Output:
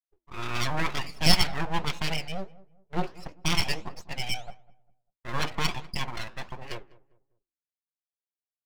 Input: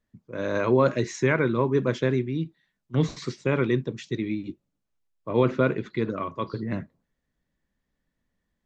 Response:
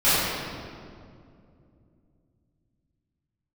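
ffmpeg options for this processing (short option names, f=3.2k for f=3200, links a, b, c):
-filter_complex "[0:a]bandreject=f=60:t=h:w=6,bandreject=f=120:t=h:w=6,bandreject=f=180:t=h:w=6,agate=range=-33dB:threshold=-44dB:ratio=3:detection=peak,afftdn=nr=35:nf=-38,equalizer=f=110:w=1.1:g=-8,aecho=1:1:6.7:0.6,asetrate=52444,aresample=44100,atempo=0.840896,lowpass=f=2.7k:t=q:w=14,aeval=exprs='abs(val(0))':c=same,flanger=delay=4.6:depth=6.8:regen=-85:speed=1.5:shape=sinusoidal,asplit=2[a][b];[b]adelay=199,lowpass=f=1k:p=1,volume=-19dB,asplit=2[c][d];[d]adelay=199,lowpass=f=1k:p=1,volume=0.36,asplit=2[e][f];[f]adelay=199,lowpass=f=1k:p=1,volume=0.36[g];[c][e][g]amix=inputs=3:normalize=0[h];[a][h]amix=inputs=2:normalize=0"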